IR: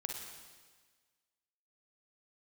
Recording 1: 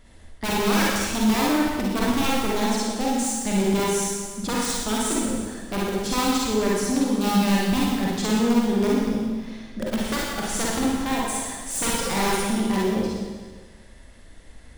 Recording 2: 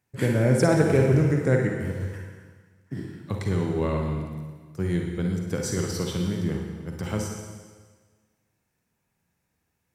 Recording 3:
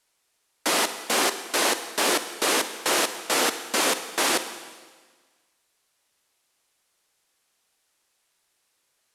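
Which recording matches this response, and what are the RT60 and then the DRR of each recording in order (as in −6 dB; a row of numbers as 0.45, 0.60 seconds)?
2; 1.5, 1.5, 1.5 seconds; −5.5, 1.0, 10.0 decibels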